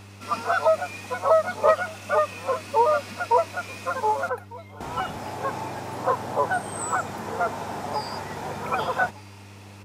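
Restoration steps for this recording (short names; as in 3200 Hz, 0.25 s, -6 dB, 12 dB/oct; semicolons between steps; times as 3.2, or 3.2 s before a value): clip repair -8 dBFS; de-hum 99.6 Hz, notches 4; inverse comb 1.2 s -21.5 dB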